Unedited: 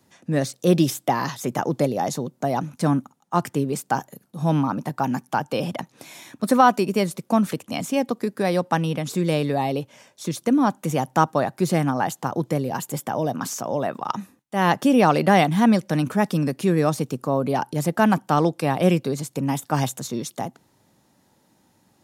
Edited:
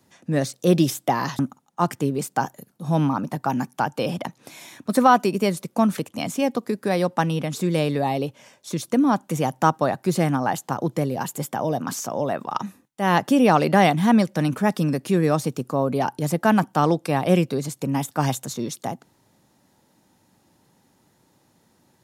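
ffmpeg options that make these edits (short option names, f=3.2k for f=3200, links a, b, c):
-filter_complex "[0:a]asplit=2[a][b];[a]atrim=end=1.392[c];[b]atrim=start=2.928[d];[c][d]acrossfade=d=0.004:c1=hsin:c2=hsin"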